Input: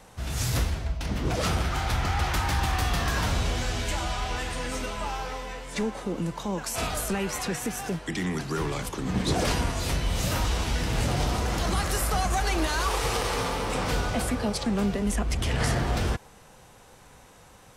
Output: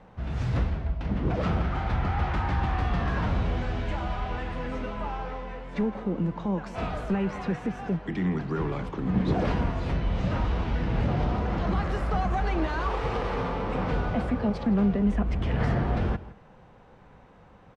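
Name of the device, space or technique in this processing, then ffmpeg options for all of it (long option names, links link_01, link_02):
phone in a pocket: -filter_complex "[0:a]asettb=1/sr,asplit=3[link_01][link_02][link_03];[link_01]atrim=end=9.934[link_04];[link_02]atrim=start=9.93:end=11.82,asetpts=PTS-STARTPTS,afade=type=in:duration=0.004:curve=qsin,afade=type=out:start_time=1.886:duration=0.004:curve=qsin,lowpass=8000[link_05];[link_03]atrim=start=11.816[link_06];[link_04][link_05]acrossfade=duration=0.004:curve1=hsin:curve2=qsin[link_07];[link_07][link_06]acrossfade=duration=0.004:curve1=qsin:curve2=hsin,lowpass=3100,equalizer=frequency=190:width_type=o:width=0.52:gain=4.5,highshelf=frequency=2200:gain=-10.5,asplit=2[link_08][link_09];[link_09]adelay=163.3,volume=-17dB,highshelf=frequency=4000:gain=-3.67[link_10];[link_08][link_10]amix=inputs=2:normalize=0"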